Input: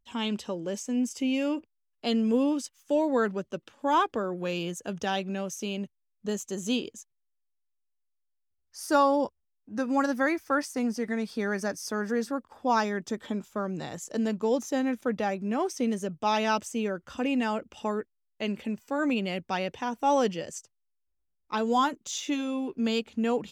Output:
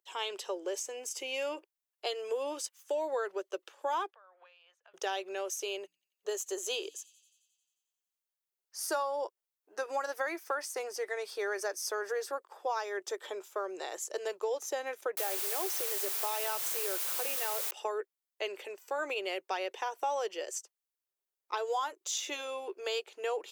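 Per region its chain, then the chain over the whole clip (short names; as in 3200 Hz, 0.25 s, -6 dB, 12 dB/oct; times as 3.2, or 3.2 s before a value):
4.1–4.94 Bessel high-pass 1100 Hz, order 8 + compressor, threshold -54 dBFS + air absorption 350 m
5.76–9.02 notches 60/120/180/240/300 Hz + thin delay 89 ms, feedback 69%, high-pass 4300 Hz, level -19.5 dB
15.17–17.71 compressor 2.5:1, threshold -28 dBFS + requantised 6-bit, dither triangular
whole clip: elliptic high-pass 370 Hz, stop band 40 dB; high shelf 8800 Hz +7.5 dB; compressor 6:1, threshold -30 dBFS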